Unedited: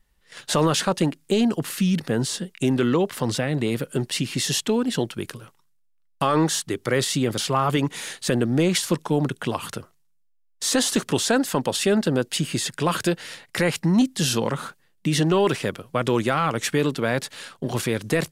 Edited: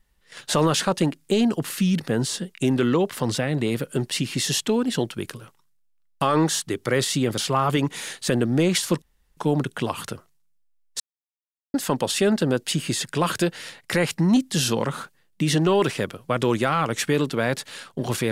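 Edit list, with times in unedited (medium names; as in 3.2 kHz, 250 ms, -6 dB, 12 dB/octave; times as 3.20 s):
9.02 s: insert room tone 0.35 s
10.65–11.39 s: mute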